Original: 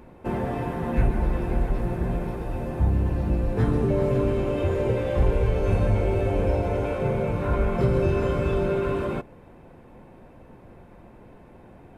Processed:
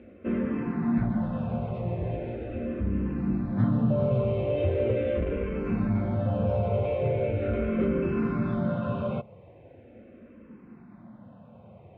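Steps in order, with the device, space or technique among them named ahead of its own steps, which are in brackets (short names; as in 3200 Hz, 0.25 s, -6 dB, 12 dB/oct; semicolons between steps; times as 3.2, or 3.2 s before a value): barber-pole phaser into a guitar amplifier (endless phaser -0.4 Hz; soft clip -16 dBFS, distortion -21 dB; speaker cabinet 90–3400 Hz, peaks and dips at 100 Hz +6 dB, 220 Hz +9 dB, 390 Hz -3 dB, 570 Hz +4 dB, 880 Hz -7 dB, 1700 Hz -4 dB)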